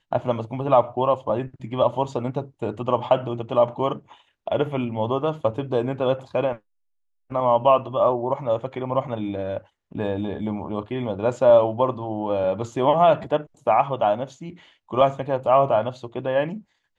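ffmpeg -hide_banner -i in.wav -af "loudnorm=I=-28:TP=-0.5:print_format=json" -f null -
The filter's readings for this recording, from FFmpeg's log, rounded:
"input_i" : "-23.0",
"input_tp" : "-5.0",
"input_lra" : "3.5",
"input_thresh" : "-33.3",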